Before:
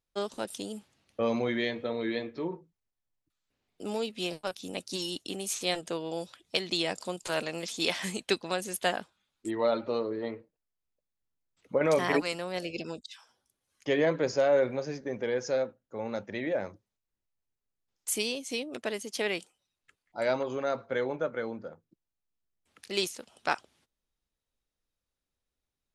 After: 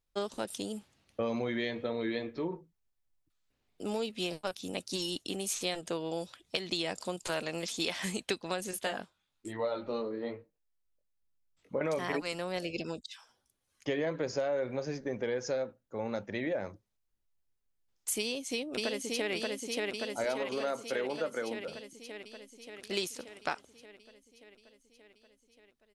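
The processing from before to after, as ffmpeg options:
-filter_complex "[0:a]asettb=1/sr,asplit=3[s0][s1][s2];[s0]atrim=end=8.714[s3];[s1]atrim=start=8.71:end=11.81,asetpts=PTS-STARTPTS,afade=t=in:d=0.004:c=qsin,afade=t=out:st=3.096:d=0.004:c=qsin,flanger=delay=19:depth=3.5:speed=1.1[s4];[s2]atrim=start=11.806[s5];[s3][s4]acrossfade=d=0.004:c1=hsin:c2=qsin[s6];[s6][s5]acrossfade=d=0.004:c1=qsin:c2=hsin,asplit=2[s7][s8];[s8]afade=t=in:st=18.19:d=0.01,afade=t=out:st=19.32:d=0.01,aecho=0:1:580|1160|1740|2320|2900|3480|4060|4640|5220|5800|6380|6960:0.749894|0.524926|0.367448|0.257214|0.18005|0.126035|0.0882243|0.061757|0.0432299|0.0302609|0.0211827|0.0148279[s9];[s7][s9]amix=inputs=2:normalize=0,asettb=1/sr,asplit=3[s10][s11][s12];[s10]atrim=end=20.244[s13];[s11]atrim=start=20.24:end=21.68,asetpts=PTS-STARTPTS,afade=t=in:d=0.004:c=qsin,afade=t=out:st=1.436:d=0.004:c=qsin,highpass=220[s14];[s12]atrim=start=21.676[s15];[s13][s14]acrossfade=d=0.004:c1=hsin:c2=qsin[s16];[s16][s15]acrossfade=d=0.004:c1=qsin:c2=hsin,lowshelf=f=60:g=8.5,acompressor=threshold=0.0355:ratio=6"

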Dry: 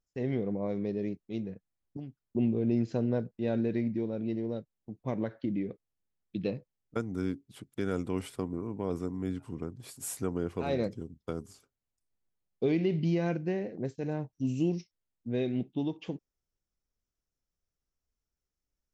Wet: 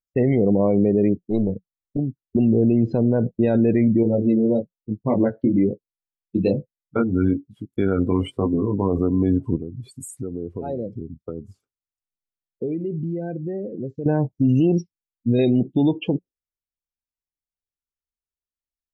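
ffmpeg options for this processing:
-filter_complex "[0:a]asettb=1/sr,asplit=3[s0][s1][s2];[s0]atrim=end=1.274[s3];[s1]atrim=start=1.27:end=1.98,asetpts=PTS-STARTPTS,afade=t=in:d=0.004:c=qsin,afade=t=out:st=0.706:d=0.004:c=qsin,aeval=exprs='clip(val(0),-1,0.0112)':c=same[s4];[s2]atrim=start=1.976[s5];[s3][s4]acrossfade=d=0.004:c1=hsin:c2=qsin[s6];[s6][s5]acrossfade=d=0.004:c1=qsin:c2=hsin,asettb=1/sr,asplit=3[s7][s8][s9];[s7]atrim=end=4.034[s10];[s8]atrim=start=4.03:end=8.99,asetpts=PTS-STARTPTS,afade=t=in:d=0.004:c=qsin,afade=t=out:st=4.956:d=0.004:c=qsin,flanger=delay=19:depth=3.5:speed=1.1[s11];[s9]atrim=start=8.986[s12];[s10][s11]acrossfade=d=0.004:c1=hsin:c2=qsin[s13];[s13][s12]acrossfade=d=0.004:c1=qsin:c2=hsin,asettb=1/sr,asplit=3[s14][s15][s16];[s14]atrim=end=9.564[s17];[s15]atrim=start=9.56:end=14.06,asetpts=PTS-STARTPTS,afade=t=in:d=0.004:c=qsin,afade=t=out:st=4.496:d=0.004:c=qsin,acompressor=threshold=0.00447:ratio=3:attack=3.2:release=140:knee=1:detection=peak[s18];[s16]atrim=start=14.056[s19];[s17][s18]acrossfade=d=0.004:c1=hsin:c2=qsin[s20];[s20][s19]acrossfade=d=0.004:c1=qsin:c2=hsin,asettb=1/sr,asplit=3[s21][s22][s23];[s21]atrim=end=14.784[s24];[s22]atrim=start=14.78:end=15.39,asetpts=PTS-STARTPTS,afade=t=in:d=0.004:c=qsin,afade=t=out:st=0.606:d=0.004:c=qsin,equalizer=f=1000:w=0.55:g=-8.5[s25];[s23]atrim=start=15.386[s26];[s24][s25]acrossfade=d=0.004:c1=hsin:c2=qsin[s27];[s27][s26]acrossfade=d=0.004:c1=qsin:c2=hsin,afftdn=nr=32:nf=-44,equalizer=f=180:w=7.9:g=-4,alimiter=level_in=23.7:limit=0.891:release=50:level=0:latency=1,volume=0.355"

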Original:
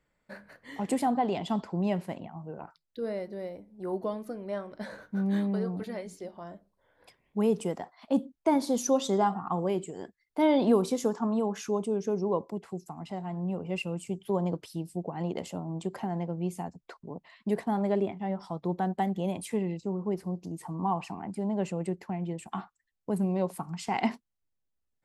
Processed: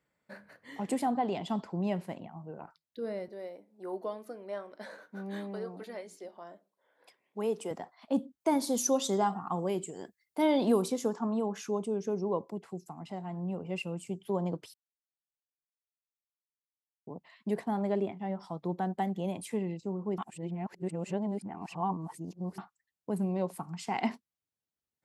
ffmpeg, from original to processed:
-filter_complex "[0:a]asettb=1/sr,asplit=3[s0][s1][s2];[s0]atrim=end=3.284[s3];[s1]atrim=start=3.28:end=7.71,asetpts=PTS-STARTPTS,afade=t=in:d=0.004:c=qsin,afade=t=out:st=4.426:d=0.004:c=qsin,highpass=330[s4];[s2]atrim=start=7.706[s5];[s3][s4]acrossfade=d=0.004:c1=hsin:c2=qsin[s6];[s6][s5]acrossfade=d=0.004:c1=qsin:c2=hsin,asettb=1/sr,asplit=3[s7][s8][s9];[s7]atrim=end=8.404[s10];[s8]atrim=start=8.4:end=10.88,asetpts=PTS-STARTPTS,afade=t=in:d=0.004:c=qsin,afade=t=out:st=2.476:d=0.004:c=qsin,highshelf=f=5600:g=10.5[s11];[s9]atrim=start=10.876[s12];[s10][s11]acrossfade=d=0.004:c1=hsin:c2=qsin[s13];[s13][s12]acrossfade=d=0.004:c1=qsin:c2=hsin,asplit=5[s14][s15][s16][s17][s18];[s14]atrim=end=14.74,asetpts=PTS-STARTPTS,afade=t=out:st=14.736:d=0.004:c=hsin[s19];[s15]atrim=start=14.74:end=17.07,asetpts=PTS-STARTPTS,volume=0[s20];[s16]atrim=start=17.07:end=20.182,asetpts=PTS-STARTPTS,afade=t=in:d=0.004:c=hsin[s21];[s17]atrim=start=20.178:end=22.582,asetpts=PTS-STARTPTS,areverse[s22];[s18]atrim=start=22.578[s23];[s19][s20][s21]concat=n=3:v=0:a=1[s24];[s24][s22]acrossfade=d=0.004:c1=hsin:c2=hsin[s25];[s25][s23]acrossfade=d=0.004:c1=hsin:c2=hsin,highpass=92,volume=0.708"

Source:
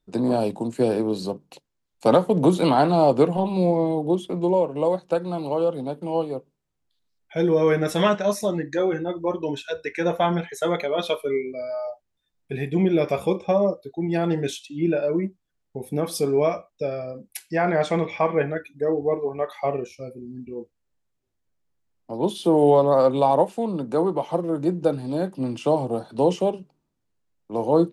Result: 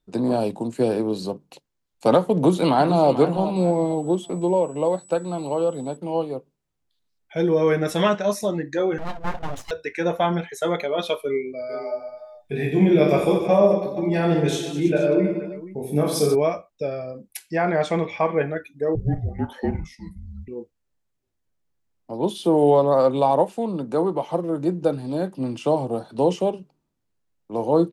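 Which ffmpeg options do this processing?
-filter_complex "[0:a]asplit=2[s0][s1];[s1]afade=t=in:st=2.35:d=0.01,afade=t=out:st=3.06:d=0.01,aecho=0:1:440|880|1320:0.266073|0.0798218|0.0239465[s2];[s0][s2]amix=inputs=2:normalize=0,asettb=1/sr,asplit=3[s3][s4][s5];[s3]atrim=end=3.564[s6];[s4]atrim=start=3.56:end=5.97,asetpts=PTS-STARTPTS,afade=t=in:d=0.004:c=qsin,afade=t=out:st=2.406:d=0.004:c=qsin,aeval=exprs='val(0)+0.00447*sin(2*PI*7900*n/s)':c=same[s7];[s5]atrim=start=5.966[s8];[s6][s7]acrossfade=d=0.004:c1=hsin:c2=qsin[s9];[s9][s8]acrossfade=d=0.004:c1=qsin:c2=hsin,asettb=1/sr,asplit=3[s10][s11][s12];[s10]atrim=end=8.984[s13];[s11]atrim=start=8.98:end=9.71,asetpts=PTS-STARTPTS,afade=t=in:d=0.004:c=qsin,afade=t=out:st=0.726:d=0.004:c=qsin,aeval=exprs='abs(val(0))':c=same[s14];[s12]atrim=start=9.706[s15];[s13][s14]acrossfade=d=0.004:c1=hsin:c2=qsin[s16];[s16][s15]acrossfade=d=0.004:c1=qsin:c2=hsin,asplit=3[s17][s18][s19];[s17]afade=t=out:st=11.69:d=0.02[s20];[s18]aecho=1:1:20|48|87.2|142.1|218.9|326.5|477.1:0.794|0.631|0.501|0.398|0.316|0.251|0.2,afade=t=in:st=11.69:d=0.02,afade=t=out:st=16.34:d=0.02[s21];[s19]afade=t=in:st=16.34:d=0.02[s22];[s20][s21][s22]amix=inputs=3:normalize=0,asettb=1/sr,asplit=3[s23][s24][s25];[s23]atrim=end=18.954[s26];[s24]atrim=start=18.95:end=20.48,asetpts=PTS-STARTPTS,afade=t=in:d=0.004:c=qsin,afade=t=out:st=1.526:d=0.004:c=qsin,afreqshift=-330[s27];[s25]atrim=start=20.476[s28];[s26][s27]acrossfade=d=0.004:c1=hsin:c2=qsin[s29];[s29][s28]acrossfade=d=0.004:c1=qsin:c2=hsin"

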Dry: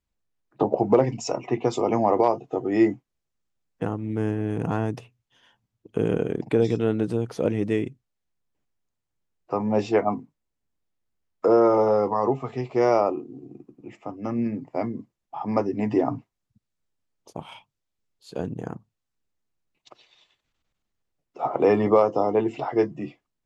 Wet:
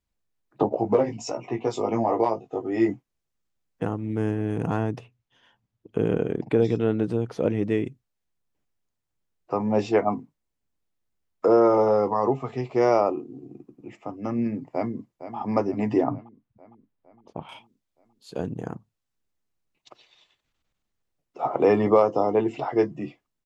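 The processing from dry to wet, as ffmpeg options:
-filter_complex "[0:a]asettb=1/sr,asplit=3[s0][s1][s2];[s0]atrim=end=0.694[s3];[s1]atrim=start=0.69:end=2.89,asetpts=PTS-STARTPTS,afade=t=in:d=0.004:c=qsin,afade=t=out:st=2.196:d=0.004:c=qsin,flanger=delay=17:depth=2:speed=1.4[s4];[s2]atrim=start=2.886[s5];[s3][s4]acrossfade=d=0.004:c1=hsin:c2=qsin[s6];[s6][s5]acrossfade=d=0.004:c1=qsin:c2=hsin,asettb=1/sr,asplit=3[s7][s8][s9];[s7]atrim=end=4.834[s10];[s8]atrim=start=4.83:end=7.85,asetpts=PTS-STARTPTS,afade=t=in:d=0.004:c=qsin,afade=t=out:st=3.016:d=0.004:c=qsin,highshelf=f=6600:g=-11.5[s11];[s9]atrim=start=7.846[s12];[s10][s11]acrossfade=d=0.004:c1=hsin:c2=qsin[s13];[s13][s12]acrossfade=d=0.004:c1=qsin:c2=hsin,asplit=2[s14][s15];[s15]afade=t=in:st=14.73:d=0.01,afade=t=out:st=15.36:d=0.01,aecho=0:1:460|920|1380|1840|2300|2760|3220:0.266073|0.159644|0.0957861|0.0574717|0.034483|0.0206898|0.0124139[s16];[s14][s16]amix=inputs=2:normalize=0,asettb=1/sr,asplit=3[s17][s18][s19];[s17]atrim=end=16.044[s20];[s18]atrim=start=16.04:end=17.49,asetpts=PTS-STARTPTS,afade=t=in:d=0.004:c=qsin,afade=t=out:st=1.446:d=0.004:c=qsin,lowpass=2500[s21];[s19]atrim=start=17.486[s22];[s20][s21]acrossfade=d=0.004:c1=hsin:c2=qsin[s23];[s23][s22]acrossfade=d=0.004:c1=qsin:c2=hsin"

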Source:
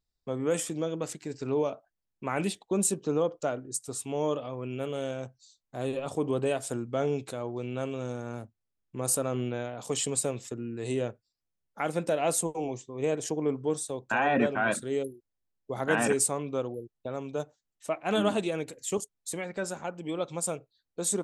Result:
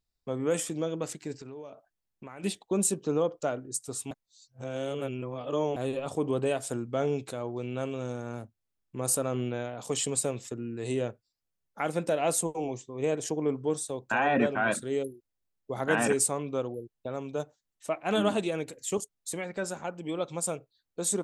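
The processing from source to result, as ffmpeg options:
-filter_complex "[0:a]asplit=3[s0][s1][s2];[s0]afade=t=out:st=1.38:d=0.02[s3];[s1]acompressor=threshold=0.00891:ratio=5:attack=3.2:release=140:knee=1:detection=peak,afade=t=in:st=1.38:d=0.02,afade=t=out:st=2.43:d=0.02[s4];[s2]afade=t=in:st=2.43:d=0.02[s5];[s3][s4][s5]amix=inputs=3:normalize=0,asplit=3[s6][s7][s8];[s6]atrim=end=4.112[s9];[s7]atrim=start=4.108:end=5.762,asetpts=PTS-STARTPTS,areverse[s10];[s8]atrim=start=5.758[s11];[s9][s10]acrossfade=d=0.004:c1=hsin:c2=hsin[s12];[s12][s11]acrossfade=d=0.004:c1=hsin:c2=hsin"

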